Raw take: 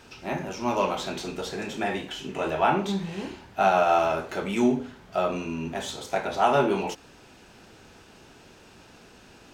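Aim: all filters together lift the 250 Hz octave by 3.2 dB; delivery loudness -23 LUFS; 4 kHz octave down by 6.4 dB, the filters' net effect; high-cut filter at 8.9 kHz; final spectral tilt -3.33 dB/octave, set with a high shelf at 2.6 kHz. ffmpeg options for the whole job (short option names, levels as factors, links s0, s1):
-af "lowpass=8900,equalizer=f=250:t=o:g=4,highshelf=f=2600:g=-3.5,equalizer=f=4000:t=o:g=-5.5,volume=1.41"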